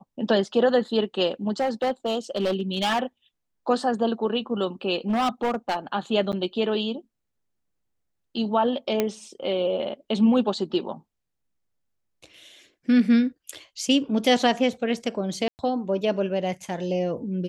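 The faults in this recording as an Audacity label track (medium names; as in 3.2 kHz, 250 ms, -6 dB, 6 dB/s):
1.600000	2.990000	clipped -19.5 dBFS
5.090000	5.770000	clipped -20 dBFS
6.320000	6.330000	dropout 8.8 ms
9.000000	9.000000	pop -9 dBFS
15.480000	15.590000	dropout 109 ms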